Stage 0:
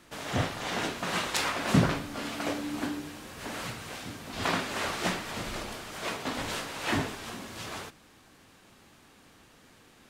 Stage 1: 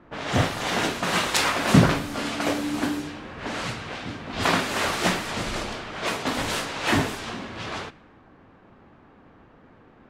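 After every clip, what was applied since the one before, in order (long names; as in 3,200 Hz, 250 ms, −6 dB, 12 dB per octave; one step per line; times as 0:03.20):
low-pass that shuts in the quiet parts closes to 1,100 Hz, open at −30 dBFS
level +7 dB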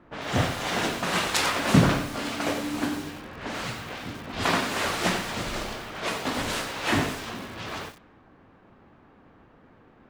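feedback echo at a low word length 91 ms, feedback 35%, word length 6 bits, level −8 dB
level −2.5 dB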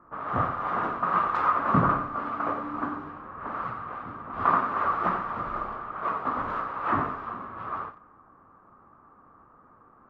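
low-pass with resonance 1,200 Hz, resonance Q 7.7
level −6.5 dB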